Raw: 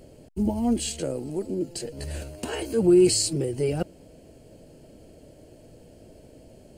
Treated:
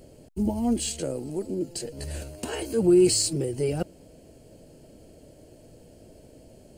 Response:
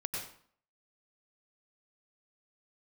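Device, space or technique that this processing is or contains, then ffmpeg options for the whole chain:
exciter from parts: -filter_complex "[0:a]asplit=2[link_01][link_02];[link_02]highpass=3600,asoftclip=type=tanh:threshold=-28.5dB,volume=-8dB[link_03];[link_01][link_03]amix=inputs=2:normalize=0,volume=-1dB"

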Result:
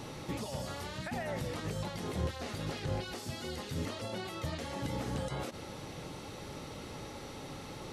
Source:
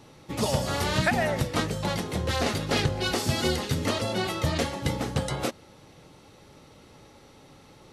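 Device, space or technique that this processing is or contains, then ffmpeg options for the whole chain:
de-esser from a sidechain: -filter_complex "[0:a]asplit=2[link_01][link_02];[link_02]highpass=frequency=4100:poles=1,apad=whole_len=349617[link_03];[link_01][link_03]sidechaincompress=threshold=-57dB:ratio=6:attack=1.9:release=35,volume=8dB"

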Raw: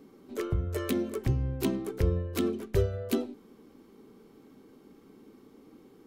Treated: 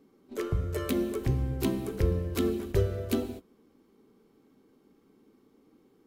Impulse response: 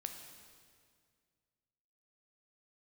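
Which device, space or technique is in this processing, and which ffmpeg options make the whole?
keyed gated reverb: -filter_complex "[0:a]asplit=3[link_01][link_02][link_03];[1:a]atrim=start_sample=2205[link_04];[link_02][link_04]afir=irnorm=-1:irlink=0[link_05];[link_03]apad=whole_len=267364[link_06];[link_05][link_06]sidechaingate=range=-33dB:threshold=-45dB:ratio=16:detection=peak,volume=7dB[link_07];[link_01][link_07]amix=inputs=2:normalize=0,volume=-8dB"

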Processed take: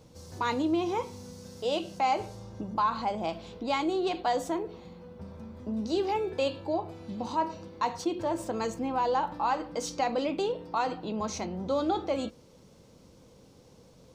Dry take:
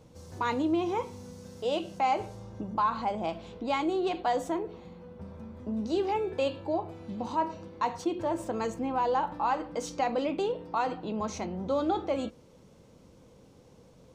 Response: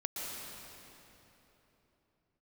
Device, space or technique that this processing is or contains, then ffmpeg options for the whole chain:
presence and air boost: -af "equalizer=frequency=4700:width_type=o:width=0.81:gain=5,highshelf=frequency=9500:gain=5.5"

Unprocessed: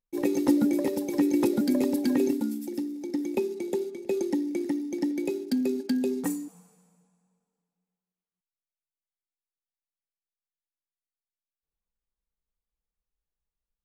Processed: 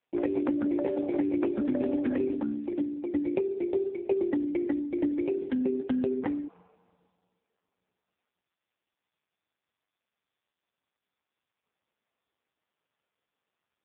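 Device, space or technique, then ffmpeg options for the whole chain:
voicemail: -af "highpass=350,lowpass=2600,acompressor=threshold=-30dB:ratio=8,volume=7dB" -ar 8000 -c:a libopencore_amrnb -b:a 5150

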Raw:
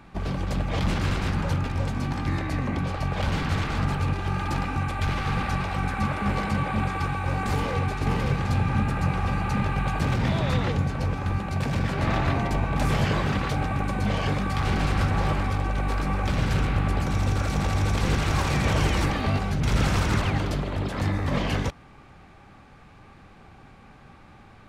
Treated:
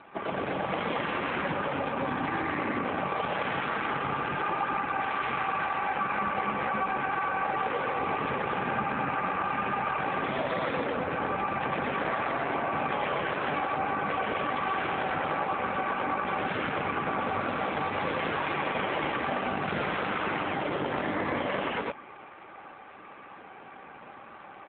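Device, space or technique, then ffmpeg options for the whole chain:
voicemail: -filter_complex "[0:a]asettb=1/sr,asplit=3[link_01][link_02][link_03];[link_01]atrim=end=18.674[link_04];[link_02]atrim=start=18.67:end=19.42,asetpts=PTS-STARTPTS,afade=type=in:duration=0.004:curve=qsin,afade=type=out:start_time=0.746:duration=0.004:curve=qsin,acrossover=split=6200[link_05][link_06];[link_06]acompressor=threshold=-54dB:ratio=4:attack=1:release=60[link_07];[link_05][link_07]amix=inputs=2:normalize=0[link_08];[link_03]atrim=start=19.416[link_09];[link_04][link_08]acrossfade=duration=0.004:curve1=hsin:curve2=qsin[link_10];[link_10][link_09]acrossfade=duration=0.004:curve1=qsin:curve2=hsin,highpass=370,lowpass=3000,aecho=1:1:122.4|215.7:0.794|0.891,acompressor=threshold=-29dB:ratio=10,volume=5.5dB" -ar 8000 -c:a libopencore_amrnb -b:a 7400

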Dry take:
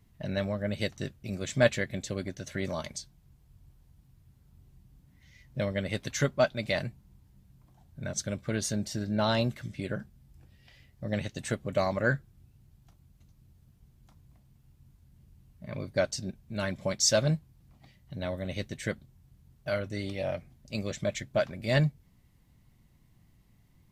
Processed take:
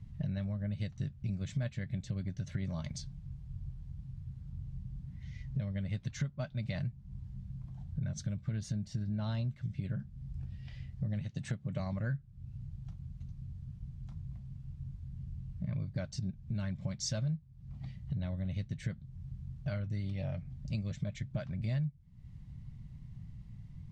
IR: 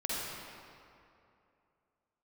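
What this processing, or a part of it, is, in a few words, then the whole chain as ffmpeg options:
jukebox: -filter_complex "[0:a]asettb=1/sr,asplit=3[link_01][link_02][link_03];[link_01]atrim=end=11.214[link_04];[link_02]atrim=start=11.21:end=11.8,asetpts=PTS-STARTPTS,afade=type=in:duration=0.004:curve=qsin,afade=type=out:start_time=0.586:duration=0.004:curve=qsin,highpass=110[link_05];[link_03]atrim=start=11.796[link_06];[link_04][link_05]acrossfade=duration=0.004:curve1=hsin:curve2=qsin[link_07];[link_07][link_06]acrossfade=duration=0.004:curve1=qsin:curve2=hsin,lowpass=6100,lowshelf=frequency=230:width_type=q:width=1.5:gain=13.5,acompressor=threshold=-34dB:ratio=6"

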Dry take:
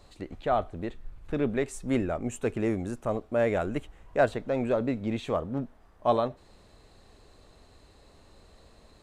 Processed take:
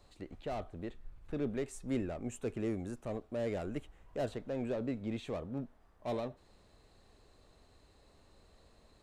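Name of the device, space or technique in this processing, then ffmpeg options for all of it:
one-band saturation: -filter_complex "[0:a]acrossover=split=520|3500[link_01][link_02][link_03];[link_02]asoftclip=type=tanh:threshold=-35dB[link_04];[link_01][link_04][link_03]amix=inputs=3:normalize=0,volume=-7.5dB"

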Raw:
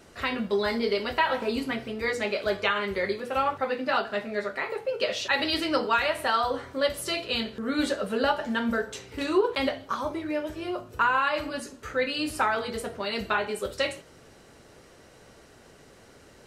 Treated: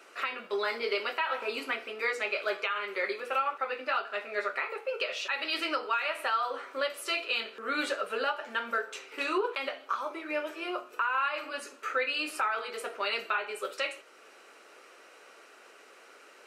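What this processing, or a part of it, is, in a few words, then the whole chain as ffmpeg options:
laptop speaker: -af "highpass=frequency=350:width=0.5412,highpass=frequency=350:width=1.3066,equalizer=frequency=1300:width_type=o:width=0.51:gain=9.5,equalizer=frequency=2500:width_type=o:width=0.41:gain=10,alimiter=limit=-16.5dB:level=0:latency=1:release=450,volume=-3dB"

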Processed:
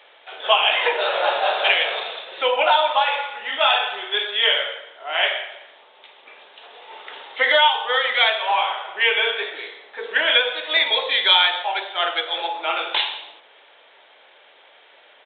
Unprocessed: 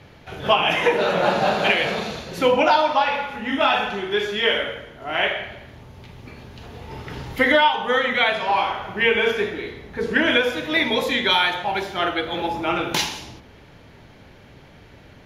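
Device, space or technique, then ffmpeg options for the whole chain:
musical greeting card: -af "aresample=8000,aresample=44100,highpass=frequency=530:width=0.5412,highpass=frequency=530:width=1.3066,equalizer=frequency=3700:width_type=o:width=0.59:gain=8.5"

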